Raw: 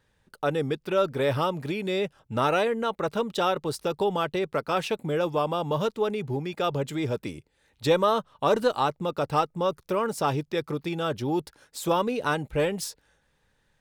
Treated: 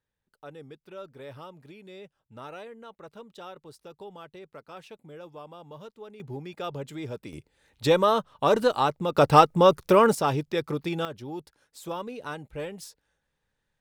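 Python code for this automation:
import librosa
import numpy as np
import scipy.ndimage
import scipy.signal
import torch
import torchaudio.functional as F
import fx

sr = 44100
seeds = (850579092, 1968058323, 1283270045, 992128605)

y = fx.gain(x, sr, db=fx.steps((0.0, -18.0), (6.2, -7.5), (7.33, 1.0), (9.15, 8.5), (10.15, 0.5), (11.05, -10.0)))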